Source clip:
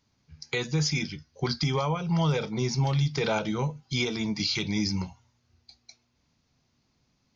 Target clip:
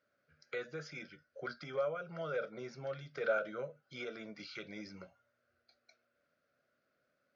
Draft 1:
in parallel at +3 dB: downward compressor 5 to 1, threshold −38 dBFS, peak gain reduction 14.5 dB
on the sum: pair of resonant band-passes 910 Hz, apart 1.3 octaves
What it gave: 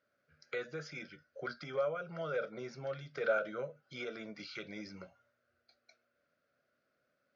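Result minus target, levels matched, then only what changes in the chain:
downward compressor: peak gain reduction −7 dB
change: downward compressor 5 to 1, threshold −47 dBFS, peak gain reduction 22 dB

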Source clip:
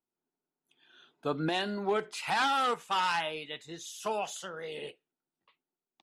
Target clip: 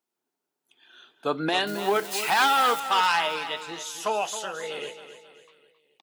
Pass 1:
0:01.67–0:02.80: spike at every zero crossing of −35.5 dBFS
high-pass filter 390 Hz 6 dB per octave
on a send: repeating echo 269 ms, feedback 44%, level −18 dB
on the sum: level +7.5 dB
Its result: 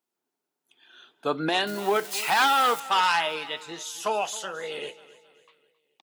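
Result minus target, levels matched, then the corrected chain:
echo-to-direct −6.5 dB
0:01.67–0:02.80: spike at every zero crossing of −35.5 dBFS
high-pass filter 390 Hz 6 dB per octave
on a send: repeating echo 269 ms, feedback 44%, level −11.5 dB
on the sum: level +7.5 dB

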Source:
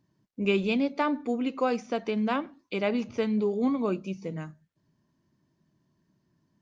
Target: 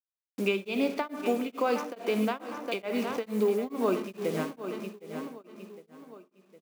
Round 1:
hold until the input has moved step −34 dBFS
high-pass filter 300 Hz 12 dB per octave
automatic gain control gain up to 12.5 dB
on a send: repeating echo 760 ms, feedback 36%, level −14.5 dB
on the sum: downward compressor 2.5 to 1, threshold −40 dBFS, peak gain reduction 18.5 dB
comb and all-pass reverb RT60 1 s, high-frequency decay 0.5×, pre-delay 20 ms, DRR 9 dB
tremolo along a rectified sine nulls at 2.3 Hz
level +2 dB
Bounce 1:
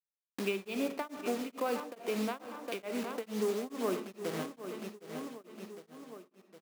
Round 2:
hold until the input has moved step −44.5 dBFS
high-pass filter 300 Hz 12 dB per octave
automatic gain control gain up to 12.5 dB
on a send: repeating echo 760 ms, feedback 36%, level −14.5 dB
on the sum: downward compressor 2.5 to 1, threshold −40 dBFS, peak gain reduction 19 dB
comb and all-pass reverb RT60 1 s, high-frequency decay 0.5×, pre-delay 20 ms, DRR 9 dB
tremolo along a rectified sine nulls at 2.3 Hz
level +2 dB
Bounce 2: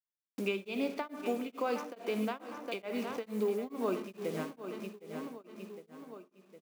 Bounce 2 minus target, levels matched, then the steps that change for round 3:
downward compressor: peak gain reduction +6 dB
change: downward compressor 2.5 to 1, threshold −30 dBFS, peak gain reduction 13 dB

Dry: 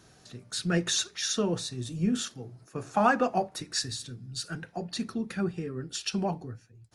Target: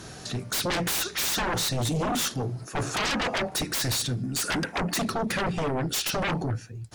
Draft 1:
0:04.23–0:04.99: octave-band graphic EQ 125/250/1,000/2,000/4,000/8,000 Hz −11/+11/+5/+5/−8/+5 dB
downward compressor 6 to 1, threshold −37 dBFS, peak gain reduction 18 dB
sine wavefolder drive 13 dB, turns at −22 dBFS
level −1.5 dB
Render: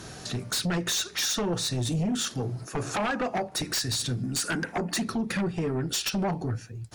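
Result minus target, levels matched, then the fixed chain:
downward compressor: peak gain reduction +8.5 dB
0:04.23–0:04.99: octave-band graphic EQ 125/250/1,000/2,000/4,000/8,000 Hz −11/+11/+5/+5/−8/+5 dB
downward compressor 6 to 1, threshold −27 dBFS, peak gain reduction 9.5 dB
sine wavefolder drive 13 dB, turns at −22 dBFS
level −1.5 dB

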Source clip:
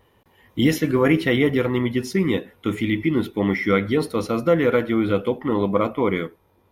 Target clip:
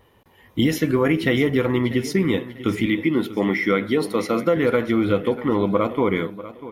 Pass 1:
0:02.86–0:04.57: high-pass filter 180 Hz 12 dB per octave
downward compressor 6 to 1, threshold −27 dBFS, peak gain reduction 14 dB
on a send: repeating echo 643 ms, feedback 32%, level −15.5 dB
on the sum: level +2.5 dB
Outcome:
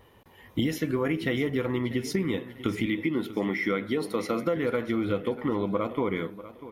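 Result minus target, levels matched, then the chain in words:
downward compressor: peak gain reduction +8.5 dB
0:02.86–0:04.57: high-pass filter 180 Hz 12 dB per octave
downward compressor 6 to 1, threshold −17 dBFS, peak gain reduction 5.5 dB
on a send: repeating echo 643 ms, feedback 32%, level −15.5 dB
on the sum: level +2.5 dB

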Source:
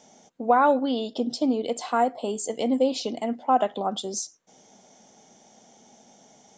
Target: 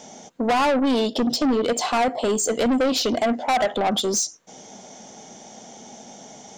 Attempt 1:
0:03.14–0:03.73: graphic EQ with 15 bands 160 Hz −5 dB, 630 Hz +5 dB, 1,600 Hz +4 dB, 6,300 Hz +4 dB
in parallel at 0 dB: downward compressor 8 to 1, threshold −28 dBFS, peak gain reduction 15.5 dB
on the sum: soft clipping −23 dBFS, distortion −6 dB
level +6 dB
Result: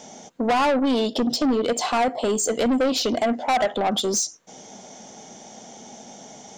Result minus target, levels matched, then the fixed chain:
downward compressor: peak gain reduction +5.5 dB
0:03.14–0:03.73: graphic EQ with 15 bands 160 Hz −5 dB, 630 Hz +5 dB, 1,600 Hz +4 dB, 6,300 Hz +4 dB
in parallel at 0 dB: downward compressor 8 to 1, threshold −21.5 dBFS, peak gain reduction 10 dB
on the sum: soft clipping −23 dBFS, distortion −5 dB
level +6 dB

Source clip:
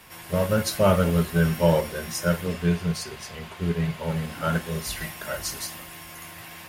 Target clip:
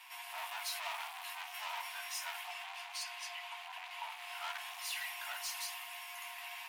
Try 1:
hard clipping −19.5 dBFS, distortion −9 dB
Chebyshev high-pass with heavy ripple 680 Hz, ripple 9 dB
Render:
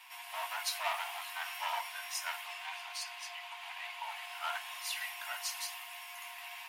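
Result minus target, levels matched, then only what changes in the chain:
hard clipping: distortion −7 dB
change: hard clipping −29.5 dBFS, distortion −3 dB

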